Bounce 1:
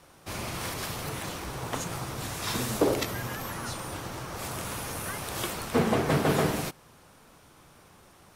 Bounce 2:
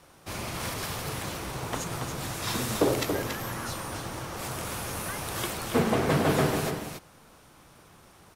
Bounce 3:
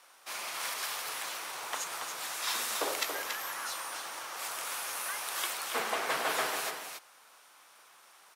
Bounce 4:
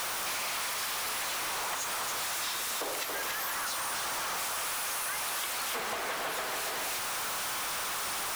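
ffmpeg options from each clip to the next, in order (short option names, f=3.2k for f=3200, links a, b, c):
-af "aecho=1:1:280:0.473"
-af "highpass=930"
-af "aeval=exprs='val(0)+0.5*0.0473*sgn(val(0))':c=same,acompressor=threshold=-31dB:ratio=6,volume=-1.5dB"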